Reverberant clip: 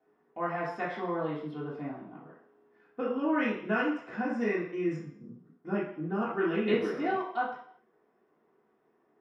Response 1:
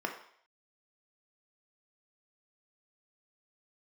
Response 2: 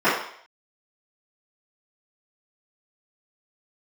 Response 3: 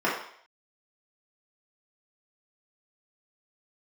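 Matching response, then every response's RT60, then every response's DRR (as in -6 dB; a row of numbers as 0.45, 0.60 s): 3; 0.60, 0.60, 0.60 s; 2.0, -17.0, -7.5 dB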